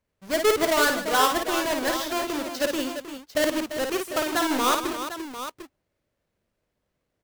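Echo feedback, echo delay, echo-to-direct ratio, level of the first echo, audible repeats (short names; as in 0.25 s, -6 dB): no steady repeat, 54 ms, -2.5 dB, -5.0 dB, 4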